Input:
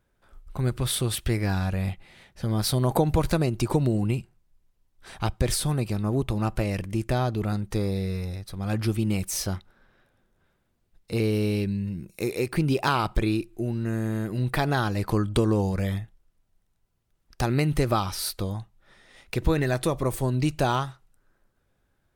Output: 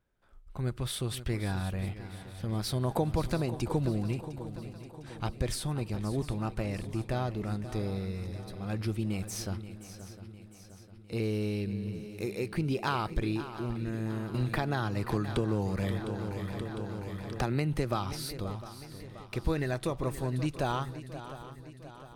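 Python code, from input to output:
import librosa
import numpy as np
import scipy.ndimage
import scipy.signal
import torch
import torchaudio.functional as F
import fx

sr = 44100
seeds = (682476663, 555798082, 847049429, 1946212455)

y = fx.high_shelf(x, sr, hz=9200.0, db=-7.0)
y = fx.echo_swing(y, sr, ms=705, ratio=3, feedback_pct=50, wet_db=-13.0)
y = fx.band_squash(y, sr, depth_pct=70, at=(14.34, 18.13))
y = F.gain(torch.from_numpy(y), -7.0).numpy()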